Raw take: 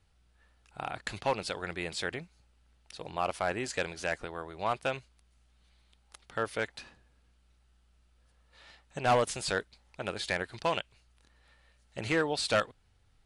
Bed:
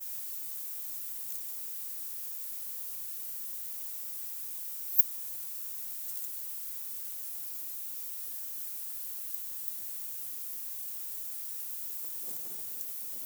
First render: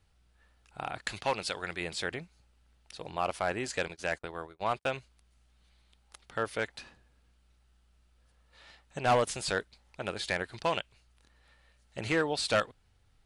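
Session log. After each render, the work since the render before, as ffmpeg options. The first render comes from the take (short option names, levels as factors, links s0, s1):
-filter_complex "[0:a]asettb=1/sr,asplit=3[s0][s1][s2];[s0]atrim=end=0.984[s3];[s1]atrim=start=0.98:end=1.81,asetpts=PTS-STARTPTS,afade=t=in:d=0.004:c=qsin,afade=t=out:st=0.826:d=0.004:c=qsin,tiltshelf=f=970:g=-3[s4];[s2]atrim=start=1.806[s5];[s3][s4]acrossfade=d=0.004:c1=hsin:c2=qsin[s6];[s6][s5]acrossfade=d=0.004:c1=qsin:c2=hsin,asettb=1/sr,asplit=3[s7][s8][s9];[s7]atrim=end=3.884[s10];[s8]atrim=start=3.88:end=4.87,asetpts=PTS-STARTPTS,afade=t=in:d=0.004:c=qsin,afade=t=out:st=0.986:d=0.004:c=qsin,agate=range=0.0158:threshold=0.00631:ratio=16:release=100:detection=peak[s11];[s9]atrim=start=4.866[s12];[s10][s11]acrossfade=d=0.004:c1=hsin:c2=qsin[s13];[s13][s12]acrossfade=d=0.004:c1=qsin:c2=hsin"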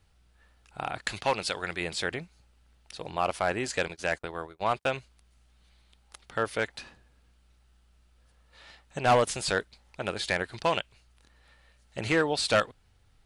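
-af "volume=1.5"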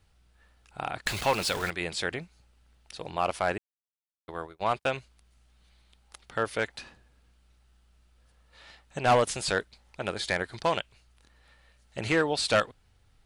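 -filter_complex "[0:a]asettb=1/sr,asplit=3[s0][s1][s2];[s0]atrim=end=1.064[s3];[s1]atrim=start=1.06:end=1.7,asetpts=PTS-STARTPTS,afade=t=in:d=0.004:c=qsin,afade=t=out:st=0.636:d=0.004:c=qsin,aeval=exprs='val(0)+0.5*0.0266*sgn(val(0))':c=same[s4];[s2]atrim=start=1.696[s5];[s3][s4]acrossfade=d=0.004:c1=hsin:c2=qsin[s6];[s6][s5]acrossfade=d=0.004:c1=qsin:c2=hsin,asettb=1/sr,asplit=3[s7][s8][s9];[s7]atrim=end=10.094[s10];[s8]atrim=start=10.09:end=10.8,asetpts=PTS-STARTPTS,afade=t=in:d=0.004:c=qsin,afade=t=out:st=0.706:d=0.004:c=qsin,equalizer=f=2700:w=7.4:g=-6.5[s11];[s9]atrim=start=10.796[s12];[s10][s11]acrossfade=d=0.004:c1=hsin:c2=qsin[s13];[s13][s12]acrossfade=d=0.004:c1=qsin:c2=hsin,asplit=3[s14][s15][s16];[s14]atrim=end=3.58,asetpts=PTS-STARTPTS,afade=t=out:st=3.576:d=0.004:c=hsin[s17];[s15]atrim=start=3.58:end=4.28,asetpts=PTS-STARTPTS,volume=0[s18];[s16]atrim=start=4.28,asetpts=PTS-STARTPTS,afade=t=in:d=0.004:c=hsin[s19];[s17][s18][s19]concat=n=3:v=0:a=1"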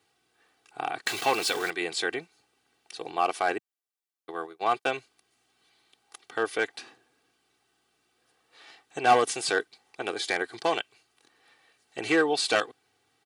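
-af "highpass=f=170:w=0.5412,highpass=f=170:w=1.3066,aecho=1:1:2.6:0.72"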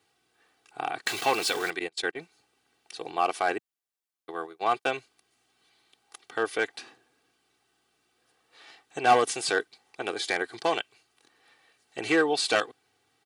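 -filter_complex "[0:a]asettb=1/sr,asplit=3[s0][s1][s2];[s0]atrim=end=1.794[s3];[s1]atrim=start=1.79:end=2.19,asetpts=PTS-STARTPTS,afade=t=in:d=0.004:c=qsin,afade=t=out:st=0.396:d=0.004:c=qsin,agate=range=0.0251:threshold=0.0282:ratio=16:release=100:detection=peak[s4];[s2]atrim=start=2.186[s5];[s3][s4]acrossfade=d=0.004:c1=hsin:c2=qsin[s6];[s6][s5]acrossfade=d=0.004:c1=qsin:c2=hsin"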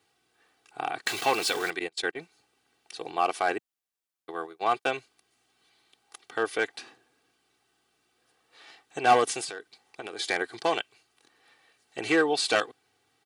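-filter_complex "[0:a]asettb=1/sr,asplit=3[s0][s1][s2];[s0]atrim=end=9.444[s3];[s1]atrim=start=9.44:end=10.19,asetpts=PTS-STARTPTS,afade=t=in:d=0.004:c=qsin,afade=t=out:st=0.746:d=0.004:c=qsin,acompressor=threshold=0.0224:ratio=12:attack=3.2:release=140:knee=1:detection=peak[s4];[s2]atrim=start=10.186[s5];[s3][s4]acrossfade=d=0.004:c1=hsin:c2=qsin[s6];[s6][s5]acrossfade=d=0.004:c1=qsin:c2=hsin"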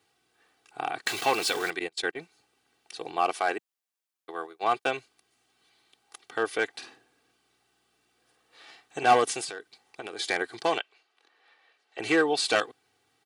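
-filter_complex "[0:a]asettb=1/sr,asplit=3[s0][s1][s2];[s0]atrim=end=3.334[s3];[s1]atrim=start=3.33:end=4.64,asetpts=PTS-STARTPTS,afade=t=in:d=0.004:c=qsin,afade=t=out:st=1.306:d=0.004:c=qsin,highpass=f=280:p=1[s4];[s2]atrim=start=4.636[s5];[s3][s4]acrossfade=d=0.004:c1=hsin:c2=qsin[s6];[s6][s5]acrossfade=d=0.004:c1=qsin:c2=hsin,asettb=1/sr,asplit=3[s7][s8][s9];[s7]atrim=end=6.704[s10];[s8]atrim=start=6.7:end=9.04,asetpts=PTS-STARTPTS,afade=t=in:d=0.004:c=qsin,afade=t=out:st=2.336:d=0.004:c=qsin,asplit=2[s11][s12];[s12]adelay=50,volume=0.398[s13];[s11][s13]amix=inputs=2:normalize=0,atrim=end_sample=103194[s14];[s9]atrim=start=9.036[s15];[s10][s14]acrossfade=d=0.004:c1=hsin:c2=qsin[s16];[s16][s15]acrossfade=d=0.004:c1=qsin:c2=hsin,asettb=1/sr,asplit=3[s17][s18][s19];[s17]atrim=end=10.784[s20];[s18]atrim=start=10.78:end=12,asetpts=PTS-STARTPTS,afade=t=in:d=0.004:c=qsin,afade=t=out:st=1.216:d=0.004:c=qsin,acrossover=split=350 4800:gain=0.0708 1 0.158[s21][s22][s23];[s21][s22][s23]amix=inputs=3:normalize=0[s24];[s19]atrim=start=11.996[s25];[s20][s24]acrossfade=d=0.004:c1=hsin:c2=qsin[s26];[s26][s25]acrossfade=d=0.004:c1=qsin:c2=hsin"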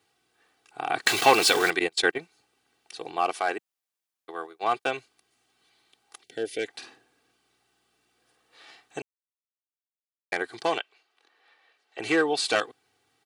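-filter_complex "[0:a]asettb=1/sr,asplit=3[s0][s1][s2];[s0]atrim=end=6.234[s3];[s1]atrim=start=6.23:end=6.66,asetpts=PTS-STARTPTS,afade=t=in:d=0.004:c=qsin,afade=t=out:st=0.426:d=0.004:c=qsin,asuperstop=centerf=1100:order=4:qfactor=0.71[s4];[s2]atrim=start=6.656[s5];[s3][s4]acrossfade=d=0.004:c1=hsin:c2=qsin[s6];[s6][s5]acrossfade=d=0.004:c1=qsin:c2=hsin,asplit=5[s7][s8][s9][s10][s11];[s7]atrim=end=0.902[s12];[s8]atrim=start=0.898:end=2.182,asetpts=PTS-STARTPTS,volume=2.24[s13];[s9]atrim=start=2.178:end=9.02,asetpts=PTS-STARTPTS,afade=t=out:st=6.838:d=0.004:c=hsin[s14];[s10]atrim=start=9.02:end=10.32,asetpts=PTS-STARTPTS,volume=0[s15];[s11]atrim=start=10.32,asetpts=PTS-STARTPTS,afade=t=in:d=0.004:c=hsin[s16];[s12][s13]acrossfade=d=0.004:c1=hsin:c2=hsin[s17];[s14][s15][s16]concat=n=3:v=0:a=1[s18];[s17][s18]acrossfade=d=0.004:c1=hsin:c2=hsin"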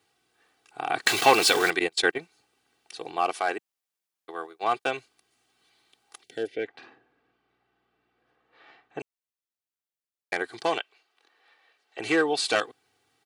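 -filter_complex "[0:a]asplit=3[s0][s1][s2];[s0]afade=t=out:st=6.46:d=0.02[s3];[s1]lowpass=2100,afade=t=in:st=6.46:d=0.02,afade=t=out:st=8.99:d=0.02[s4];[s2]afade=t=in:st=8.99:d=0.02[s5];[s3][s4][s5]amix=inputs=3:normalize=0"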